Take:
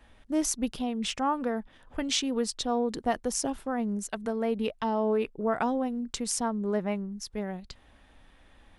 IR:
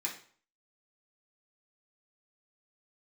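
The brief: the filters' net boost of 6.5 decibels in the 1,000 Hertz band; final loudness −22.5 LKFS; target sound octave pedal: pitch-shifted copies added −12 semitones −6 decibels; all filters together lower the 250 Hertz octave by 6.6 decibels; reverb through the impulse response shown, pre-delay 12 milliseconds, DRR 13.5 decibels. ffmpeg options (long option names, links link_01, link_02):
-filter_complex "[0:a]equalizer=frequency=250:width_type=o:gain=-8,equalizer=frequency=1000:width_type=o:gain=9,asplit=2[link_01][link_02];[1:a]atrim=start_sample=2205,adelay=12[link_03];[link_02][link_03]afir=irnorm=-1:irlink=0,volume=-16dB[link_04];[link_01][link_04]amix=inputs=2:normalize=0,asplit=2[link_05][link_06];[link_06]asetrate=22050,aresample=44100,atempo=2,volume=-6dB[link_07];[link_05][link_07]amix=inputs=2:normalize=0,volume=6dB"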